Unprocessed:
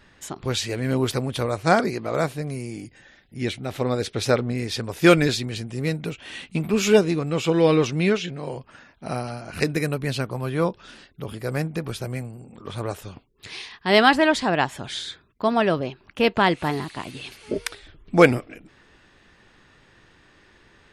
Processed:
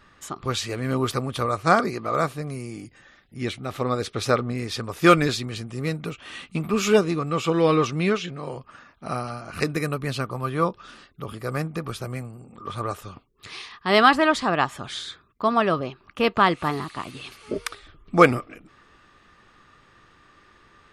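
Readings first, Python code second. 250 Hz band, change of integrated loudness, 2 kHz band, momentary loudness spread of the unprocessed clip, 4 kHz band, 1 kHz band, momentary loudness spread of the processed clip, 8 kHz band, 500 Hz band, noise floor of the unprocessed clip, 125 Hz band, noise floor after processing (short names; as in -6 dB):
-2.0 dB, -0.5 dB, -1.0 dB, 19 LU, -2.0 dB, +2.5 dB, 19 LU, -2.0 dB, -2.0 dB, -57 dBFS, -2.0 dB, -57 dBFS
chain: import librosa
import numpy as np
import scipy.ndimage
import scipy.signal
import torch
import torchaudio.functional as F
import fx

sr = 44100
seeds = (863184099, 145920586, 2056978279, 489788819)

y = fx.peak_eq(x, sr, hz=1200.0, db=14.0, octaves=0.22)
y = y * 10.0 ** (-2.0 / 20.0)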